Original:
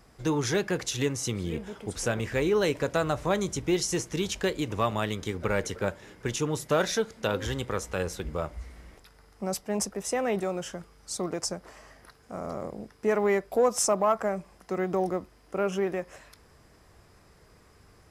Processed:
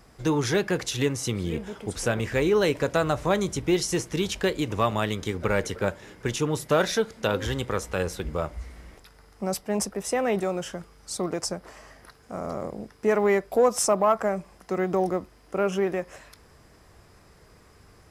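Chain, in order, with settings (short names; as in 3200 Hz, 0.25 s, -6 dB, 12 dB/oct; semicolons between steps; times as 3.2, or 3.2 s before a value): dynamic EQ 6600 Hz, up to -4 dB, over -46 dBFS, Q 2.4; gain +3 dB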